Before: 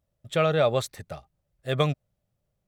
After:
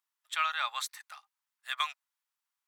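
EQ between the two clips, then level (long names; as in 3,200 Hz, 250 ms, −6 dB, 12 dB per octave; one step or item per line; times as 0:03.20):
Chebyshev high-pass filter 930 Hz, order 5
0.0 dB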